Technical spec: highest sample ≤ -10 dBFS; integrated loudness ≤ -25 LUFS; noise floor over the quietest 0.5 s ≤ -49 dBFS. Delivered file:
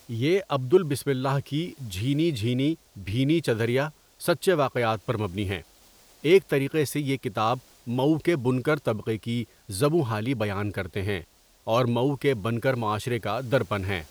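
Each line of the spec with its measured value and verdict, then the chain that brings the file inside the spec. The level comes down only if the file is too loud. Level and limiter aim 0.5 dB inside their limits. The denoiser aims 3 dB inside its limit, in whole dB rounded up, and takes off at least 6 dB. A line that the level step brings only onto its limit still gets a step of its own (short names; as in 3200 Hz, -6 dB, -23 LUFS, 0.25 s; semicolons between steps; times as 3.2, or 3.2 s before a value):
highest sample -7.5 dBFS: fail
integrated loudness -26.0 LUFS: OK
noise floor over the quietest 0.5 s -56 dBFS: OK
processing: limiter -10.5 dBFS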